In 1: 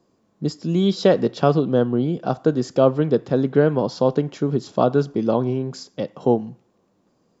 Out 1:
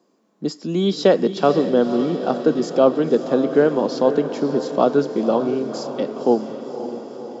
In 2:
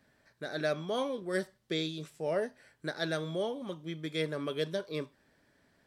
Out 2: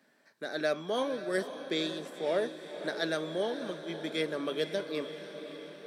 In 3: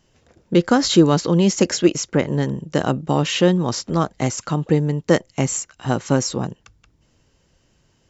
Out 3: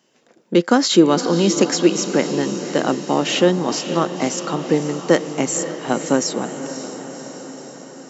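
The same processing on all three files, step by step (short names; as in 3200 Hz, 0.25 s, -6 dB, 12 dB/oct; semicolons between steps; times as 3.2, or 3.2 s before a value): HPF 200 Hz 24 dB/oct; diffused feedback echo 0.535 s, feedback 64%, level -10.5 dB; gain +1.5 dB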